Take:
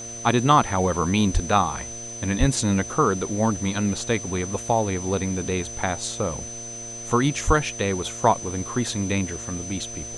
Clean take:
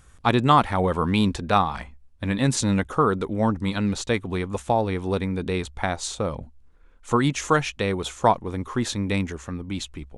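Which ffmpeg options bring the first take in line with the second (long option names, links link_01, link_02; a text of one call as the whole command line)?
ffmpeg -i in.wav -filter_complex "[0:a]bandreject=frequency=115.7:width_type=h:width=4,bandreject=frequency=231.4:width_type=h:width=4,bandreject=frequency=347.1:width_type=h:width=4,bandreject=frequency=462.8:width_type=h:width=4,bandreject=frequency=578.5:width_type=h:width=4,bandreject=frequency=694.2:width_type=h:width=4,bandreject=frequency=6100:width=30,asplit=3[link_01][link_02][link_03];[link_01]afade=type=out:start_time=1.33:duration=0.02[link_04];[link_02]highpass=frequency=140:width=0.5412,highpass=frequency=140:width=1.3066,afade=type=in:start_time=1.33:duration=0.02,afade=type=out:start_time=1.45:duration=0.02[link_05];[link_03]afade=type=in:start_time=1.45:duration=0.02[link_06];[link_04][link_05][link_06]amix=inputs=3:normalize=0,asplit=3[link_07][link_08][link_09];[link_07]afade=type=out:start_time=2.39:duration=0.02[link_10];[link_08]highpass=frequency=140:width=0.5412,highpass=frequency=140:width=1.3066,afade=type=in:start_time=2.39:duration=0.02,afade=type=out:start_time=2.51:duration=0.02[link_11];[link_09]afade=type=in:start_time=2.51:duration=0.02[link_12];[link_10][link_11][link_12]amix=inputs=3:normalize=0,asplit=3[link_13][link_14][link_15];[link_13]afade=type=out:start_time=7.46:duration=0.02[link_16];[link_14]highpass=frequency=140:width=0.5412,highpass=frequency=140:width=1.3066,afade=type=in:start_time=7.46:duration=0.02,afade=type=out:start_time=7.58:duration=0.02[link_17];[link_15]afade=type=in:start_time=7.58:duration=0.02[link_18];[link_16][link_17][link_18]amix=inputs=3:normalize=0,afwtdn=0.0063" out.wav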